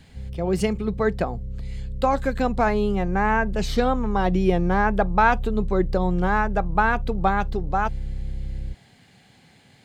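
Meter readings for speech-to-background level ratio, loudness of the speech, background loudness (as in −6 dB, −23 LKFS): 9.5 dB, −23.5 LKFS, −33.0 LKFS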